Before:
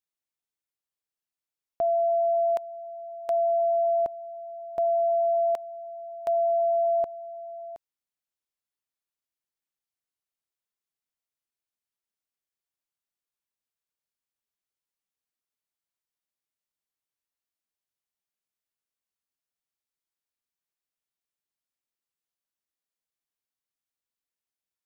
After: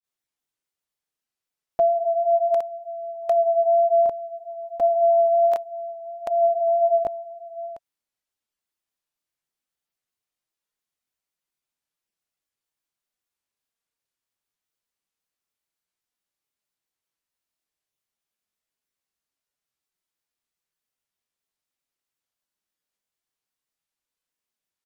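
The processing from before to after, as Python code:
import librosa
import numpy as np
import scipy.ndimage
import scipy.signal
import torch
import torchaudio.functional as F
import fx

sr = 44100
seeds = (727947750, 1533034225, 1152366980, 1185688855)

y = fx.granulator(x, sr, seeds[0], grain_ms=143.0, per_s=20.0, spray_ms=34.0, spread_st=0)
y = y * librosa.db_to_amplitude(7.5)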